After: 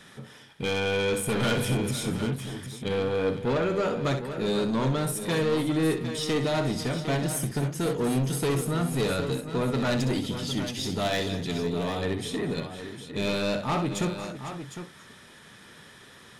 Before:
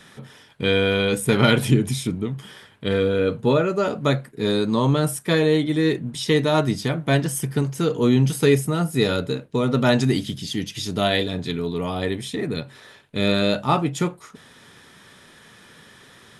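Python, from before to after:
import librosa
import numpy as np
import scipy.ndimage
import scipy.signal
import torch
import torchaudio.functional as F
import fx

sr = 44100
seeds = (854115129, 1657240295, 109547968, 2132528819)

y = 10.0 ** (-20.0 / 20.0) * np.tanh(x / 10.0 ** (-20.0 / 20.0))
y = fx.echo_multitap(y, sr, ms=(63, 234, 501, 756), db=(-9.5, -18.5, -14.5, -10.0))
y = y * librosa.db_to_amplitude(-2.5)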